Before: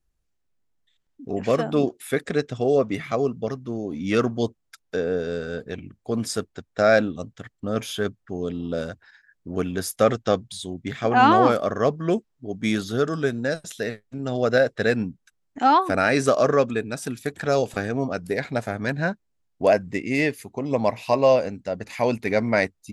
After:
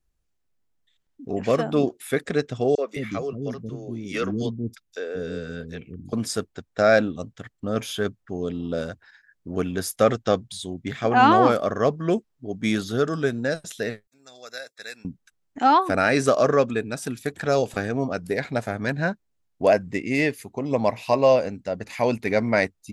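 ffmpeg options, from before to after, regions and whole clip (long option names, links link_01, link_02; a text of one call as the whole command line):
ffmpeg -i in.wav -filter_complex "[0:a]asettb=1/sr,asplit=3[link_01][link_02][link_03];[link_01]atrim=end=2.754[link_04];[link_02]atrim=start=2.75:end=6.13,asetpts=PTS-STARTPTS,afade=type=in:duration=0.004:curve=qsin,afade=type=out:start_time=3.376:duration=0.004:curve=qsin,equalizer=frequency=810:width_type=o:width=1.5:gain=-7.5,acrossover=split=350|4800[link_05][link_06][link_07];[link_06]adelay=30[link_08];[link_05]adelay=210[link_09];[link_09][link_08][link_07]amix=inputs=3:normalize=0,atrim=end_sample=149058[link_10];[link_03]atrim=start=6.126[link_11];[link_04][link_10]acrossfade=duration=0.004:curve1=hsin:curve2=qsin[link_12];[link_12][link_11]acrossfade=duration=0.004:curve1=qsin:curve2=hsin,asettb=1/sr,asplit=3[link_13][link_14][link_15];[link_13]atrim=end=14.074[link_16];[link_14]atrim=start=14.07:end=15.05,asetpts=PTS-STARTPTS,afade=type=in:duration=0.004:curve=qsin,afade=type=out:start_time=0.976:duration=0.004:curve=qsin,asuperstop=centerf=3000:order=20:qfactor=6,aderivative[link_17];[link_15]atrim=start=15.046[link_18];[link_16][link_17]acrossfade=duration=0.004:curve1=hsin:curve2=qsin[link_19];[link_19][link_18]acrossfade=duration=0.004:curve1=qsin:curve2=hsin" out.wav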